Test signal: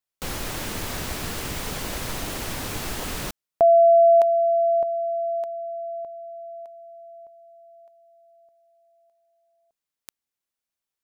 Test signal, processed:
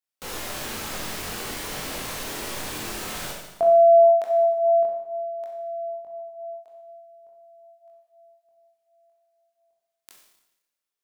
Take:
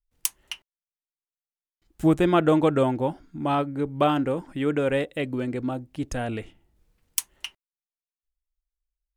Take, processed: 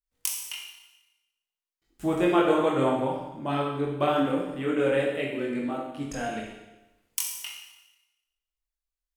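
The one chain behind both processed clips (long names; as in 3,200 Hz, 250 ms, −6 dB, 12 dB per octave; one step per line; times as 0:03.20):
low-shelf EQ 180 Hz −9.5 dB
multi-voice chorus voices 2, 0.52 Hz, delay 22 ms, depth 1.5 ms
four-comb reverb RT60 1 s, combs from 29 ms, DRR 0.5 dB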